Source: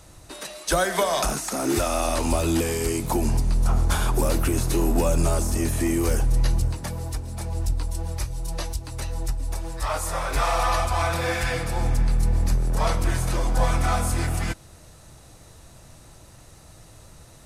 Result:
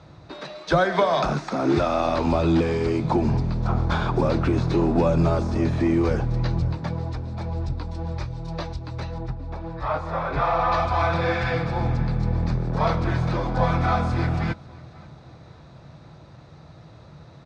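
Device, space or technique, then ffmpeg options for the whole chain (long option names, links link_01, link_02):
guitar cabinet: -filter_complex "[0:a]asettb=1/sr,asplit=3[link_01][link_02][link_03];[link_01]atrim=end=9.184[link_04];[link_02]atrim=start=9.18:end=10.72,asetpts=PTS-STARTPTS,afade=type=in:duration=0.004:curve=qsin,afade=type=out:start_time=1.536:duration=0.004:curve=qsin,aemphasis=mode=reproduction:type=75kf[link_05];[link_03]atrim=start=10.716[link_06];[link_04][link_05]acrossfade=duration=0.004:curve1=hsin:curve2=qsin[link_07];[link_07][link_06]acrossfade=duration=0.004:curve1=qsin:curve2=hsin,highpass=80,equalizer=frequency=150:width_type=q:width=4:gain=8,equalizer=frequency=1900:width_type=q:width=4:gain=-4,equalizer=frequency=2900:width_type=q:width=4:gain=-9,lowpass=frequency=3900:width=0.5412,lowpass=frequency=3900:width=1.3066,aecho=1:1:541|1082|1623:0.0631|0.0278|0.0122,volume=3dB"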